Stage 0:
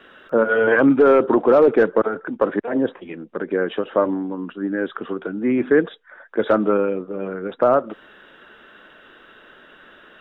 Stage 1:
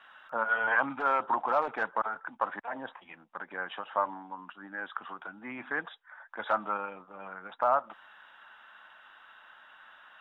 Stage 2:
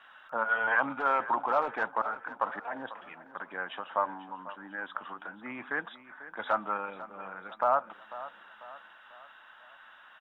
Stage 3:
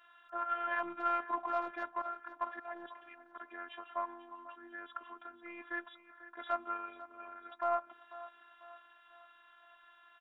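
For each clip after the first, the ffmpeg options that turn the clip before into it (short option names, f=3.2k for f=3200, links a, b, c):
-af "lowshelf=f=600:t=q:w=3:g=-12.5,volume=-8.5dB"
-af "aecho=1:1:495|990|1485|1980:0.168|0.0772|0.0355|0.0163"
-af "afftfilt=real='hypot(re,im)*cos(PI*b)':imag='0':win_size=512:overlap=0.75,aeval=exprs='0.15*(cos(1*acos(clip(val(0)/0.15,-1,1)))-cos(1*PI/2))+0.0075*(cos(2*acos(clip(val(0)/0.15,-1,1)))-cos(2*PI/2))':c=same,volume=-4dB"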